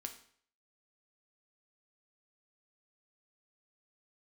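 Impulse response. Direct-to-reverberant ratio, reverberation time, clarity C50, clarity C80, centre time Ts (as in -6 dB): 5.0 dB, 0.55 s, 10.5 dB, 14.5 dB, 12 ms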